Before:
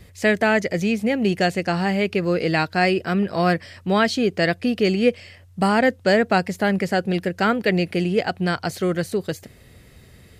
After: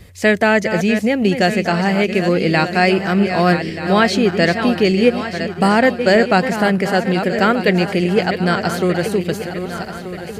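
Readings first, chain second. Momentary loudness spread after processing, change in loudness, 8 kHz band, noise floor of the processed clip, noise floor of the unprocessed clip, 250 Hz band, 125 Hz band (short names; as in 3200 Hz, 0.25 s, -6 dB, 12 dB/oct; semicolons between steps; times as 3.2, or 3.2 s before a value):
7 LU, +5.0 dB, +5.5 dB, -30 dBFS, -49 dBFS, +5.5 dB, +5.5 dB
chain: regenerating reverse delay 0.616 s, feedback 65%, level -9 dB; gain +4.5 dB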